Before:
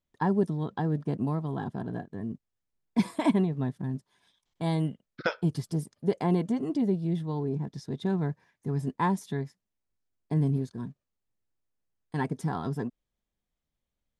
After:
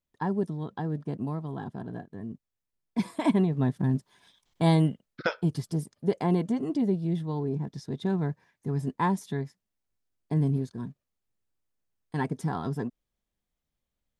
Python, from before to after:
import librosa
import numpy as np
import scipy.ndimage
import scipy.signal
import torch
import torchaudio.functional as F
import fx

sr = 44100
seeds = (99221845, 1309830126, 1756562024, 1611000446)

y = fx.gain(x, sr, db=fx.line((3.05, -3.0), (3.83, 7.0), (4.69, 7.0), (5.21, 0.5)))